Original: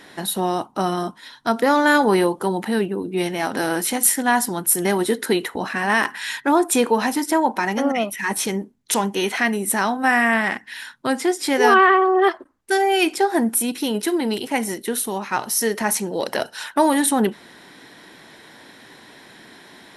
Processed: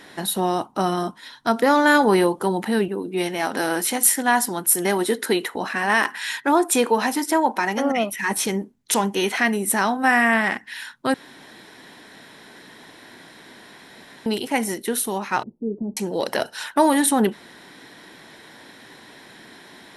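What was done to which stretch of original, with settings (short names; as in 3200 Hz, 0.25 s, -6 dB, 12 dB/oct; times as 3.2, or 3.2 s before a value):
2.88–7.9 HPF 220 Hz 6 dB/oct
11.14–14.26 room tone
15.43–15.97 inverse Chebyshev low-pass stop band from 2200 Hz, stop band 80 dB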